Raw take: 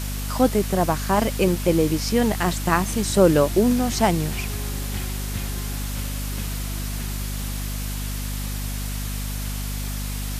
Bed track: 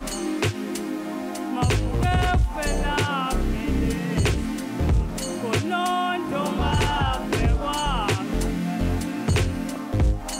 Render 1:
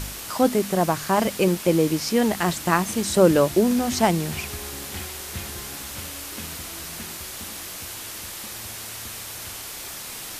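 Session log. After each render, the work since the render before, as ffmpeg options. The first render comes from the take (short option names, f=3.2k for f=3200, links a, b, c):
-af "bandreject=f=50:t=h:w=4,bandreject=f=100:t=h:w=4,bandreject=f=150:t=h:w=4,bandreject=f=200:t=h:w=4,bandreject=f=250:t=h:w=4"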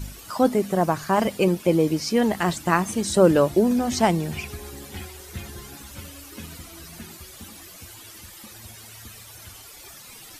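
-af "afftdn=nr=13:nf=-36"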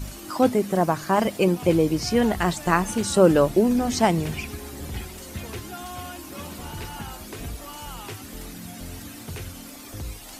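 -filter_complex "[1:a]volume=-14.5dB[a];[0:a][a]amix=inputs=2:normalize=0"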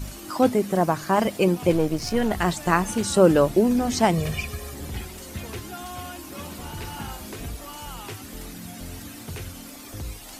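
-filter_complex "[0:a]asettb=1/sr,asplit=3[a][b][c];[a]atrim=end=1.724[d];[b]atrim=start=1.72:end=2.31,asetpts=PTS-STARTPTS,afade=t=in:d=0.004:c=qsin,afade=t=out:st=0.586:d=0.004:c=qsin,aeval=exprs='if(lt(val(0),0),0.447*val(0),val(0))':c=same[e];[c]atrim=start=2.306[f];[d][e]acrossfade=d=0.004:c1=hsin:c2=qsin[g];[g][f]acrossfade=d=0.004:c1=qsin:c2=hsin,asettb=1/sr,asplit=3[h][i][j];[h]atrim=end=4.134[k];[i]atrim=start=4.13:end=4.74,asetpts=PTS-STARTPTS,afade=t=in:d=0.004:c=qsin,afade=t=out:st=0.606:d=0.004:c=qsin,aecho=1:1:1.7:0.65,atrim=end_sample=26901[l];[j]atrim=start=4.736[m];[k][l]acrossfade=d=0.004:c1=hsin:c2=qsin[n];[n][m]acrossfade=d=0.004:c1=qsin:c2=hsin,asettb=1/sr,asplit=3[o][p][q];[o]atrim=end=6.834[r];[p]atrim=start=6.83:end=7.36,asetpts=PTS-STARTPTS,afade=t=in:d=0.004:c=qsin,afade=t=out:st=0.526:d=0.004:c=qsin,asplit=2[s][t];[t]adelay=38,volume=-6dB[u];[s][u]amix=inputs=2:normalize=0,atrim=end_sample=23373[v];[q]atrim=start=7.356[w];[r][v]acrossfade=d=0.004:c1=hsin:c2=qsin[x];[x][w]acrossfade=d=0.004:c1=qsin:c2=hsin"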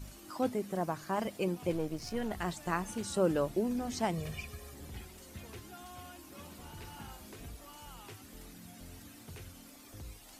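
-af "volume=-13dB"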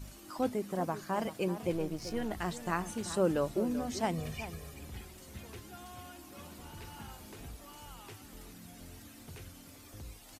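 -filter_complex "[0:a]asplit=2[a][b];[b]adelay=384.8,volume=-12dB,highshelf=f=4k:g=-8.66[c];[a][c]amix=inputs=2:normalize=0"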